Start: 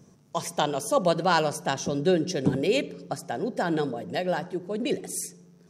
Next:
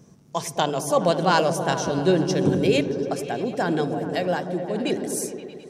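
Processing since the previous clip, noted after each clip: delay with an opening low-pass 105 ms, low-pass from 200 Hz, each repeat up 1 oct, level -3 dB; trim +2.5 dB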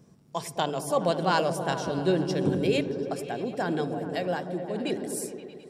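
band-stop 6.2 kHz, Q 5.7; trim -5 dB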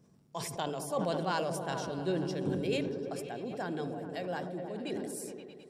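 decay stretcher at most 33 dB/s; trim -8.5 dB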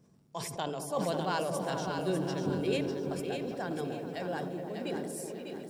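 bit-crushed delay 598 ms, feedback 35%, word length 10-bit, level -6 dB

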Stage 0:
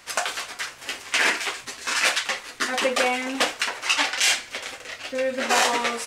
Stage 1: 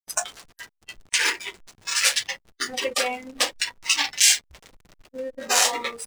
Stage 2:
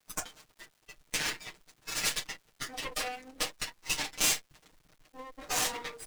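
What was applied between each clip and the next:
tone controls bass -10 dB, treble +13 dB; hysteresis with a dead band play -18 dBFS; spectral noise reduction 14 dB; trim -3 dB
comb filter that takes the minimum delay 6.5 ms; crackle 540 per s -47 dBFS; trim -9 dB

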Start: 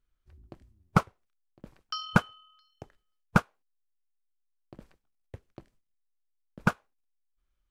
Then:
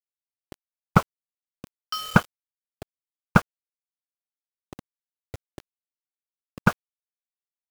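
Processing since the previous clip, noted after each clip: treble shelf 8.2 kHz -4.5 dB; bit crusher 7-bit; trim +5 dB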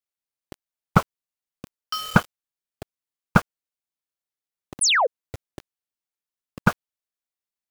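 painted sound fall, 4.81–5.07 s, 430–11000 Hz -20 dBFS; in parallel at -8 dB: saturation -15.5 dBFS, distortion -6 dB; on the sum: trim -1 dB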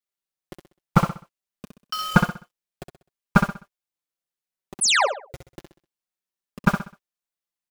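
flange 0.61 Hz, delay 4.9 ms, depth 1.1 ms, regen -5%; on a send: feedback delay 64 ms, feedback 34%, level -7 dB; on the sum: trim +2.5 dB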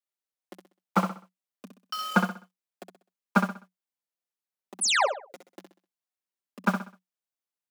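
rippled Chebyshev high-pass 180 Hz, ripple 3 dB; trim -2.5 dB

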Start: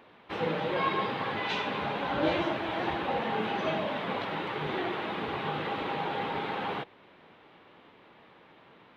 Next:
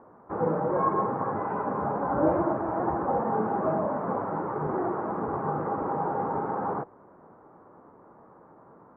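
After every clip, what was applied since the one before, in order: steep low-pass 1.3 kHz 36 dB/octave; trim +4.5 dB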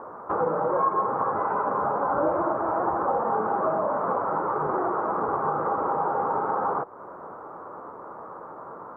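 FFT filter 240 Hz 0 dB, 530 Hz +9 dB, 780 Hz +8 dB, 1.3 kHz +14 dB, 1.8 kHz +5 dB; compression 2.5:1, threshold -32 dBFS, peak gain reduction 15 dB; trim +4.5 dB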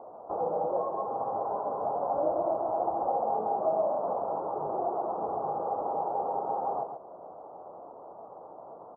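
four-pole ladder low-pass 790 Hz, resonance 65%; delay 136 ms -6.5 dB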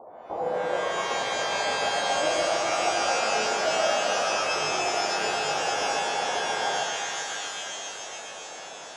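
pitch-shifted reverb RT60 3.3 s, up +12 st, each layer -2 dB, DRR 1.5 dB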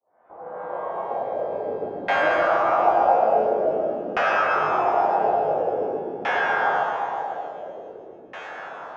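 fade-in on the opening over 2.18 s; LFO low-pass saw down 0.48 Hz 320–2000 Hz; trim +3 dB

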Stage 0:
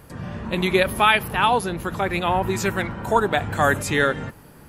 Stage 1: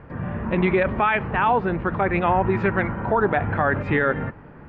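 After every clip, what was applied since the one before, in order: low-pass 2.2 kHz 24 dB/octave; peak limiter -14 dBFS, peak gain reduction 9 dB; trim +3.5 dB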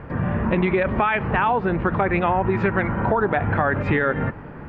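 compression 4:1, threshold -24 dBFS, peak gain reduction 8 dB; trim +6.5 dB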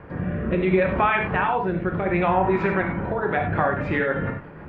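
rotary cabinet horn 0.7 Hz, later 6.3 Hz, at 2.95 s; bass shelf 170 Hz -4.5 dB; gated-style reverb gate 120 ms flat, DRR 2 dB; trim -1 dB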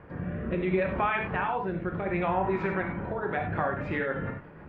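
wow and flutter 26 cents; trim -7 dB

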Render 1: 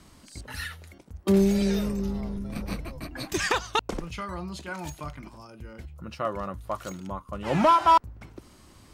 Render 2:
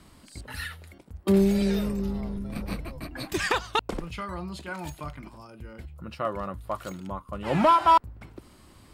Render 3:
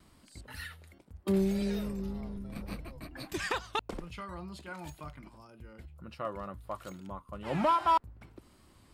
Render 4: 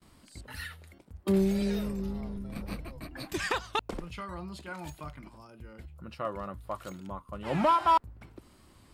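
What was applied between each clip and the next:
peaking EQ 6.1 kHz -7.5 dB 0.36 oct
wow and flutter 29 cents; trim -7.5 dB
gate with hold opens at -52 dBFS; trim +2.5 dB

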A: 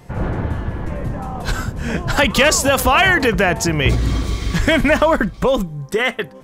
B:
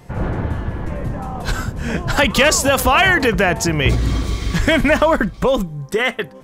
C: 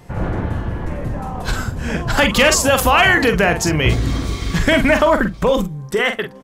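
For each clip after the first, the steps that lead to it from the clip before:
no audible change
doubling 45 ms -8 dB

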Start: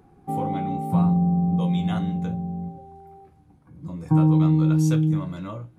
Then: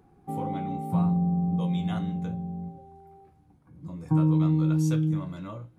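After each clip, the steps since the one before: de-hum 260.2 Hz, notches 22; trim -4.5 dB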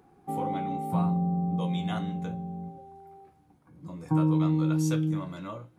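bass shelf 170 Hz -11.5 dB; trim +3 dB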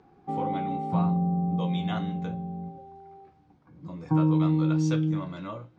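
low-pass 5.6 kHz 24 dB/octave; trim +1.5 dB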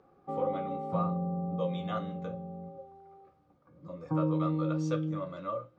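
small resonant body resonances 550/1200 Hz, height 17 dB, ringing for 45 ms; trim -8 dB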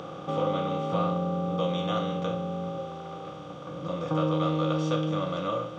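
spectral levelling over time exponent 0.4; peaking EQ 3.2 kHz +9.5 dB 0.58 oct

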